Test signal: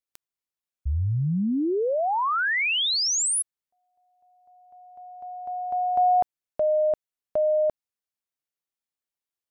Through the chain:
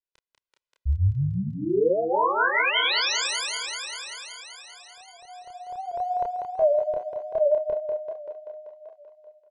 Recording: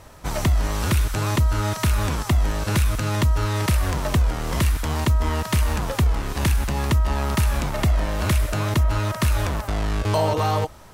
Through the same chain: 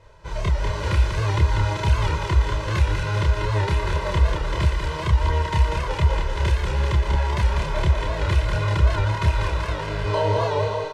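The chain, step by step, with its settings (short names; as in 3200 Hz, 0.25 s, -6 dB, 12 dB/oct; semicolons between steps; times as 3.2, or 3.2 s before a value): LPF 4500 Hz 12 dB/oct; comb 2 ms, depth 100%; on a send: thinning echo 0.193 s, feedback 74%, high-pass 190 Hz, level -4 dB; on the sum: AGC gain up to 6 dB; chorus voices 2, 1.4 Hz, delay 29 ms, depth 3 ms; record warp 78 rpm, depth 100 cents; gain -5.5 dB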